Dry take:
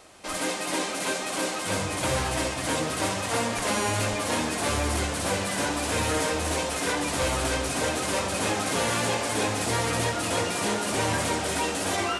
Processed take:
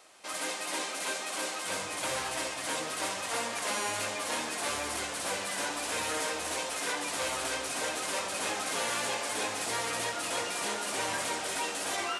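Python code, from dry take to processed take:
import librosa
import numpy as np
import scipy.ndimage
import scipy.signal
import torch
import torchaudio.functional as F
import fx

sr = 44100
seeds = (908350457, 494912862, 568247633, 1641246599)

y = fx.highpass(x, sr, hz=690.0, slope=6)
y = F.gain(torch.from_numpy(y), -4.0).numpy()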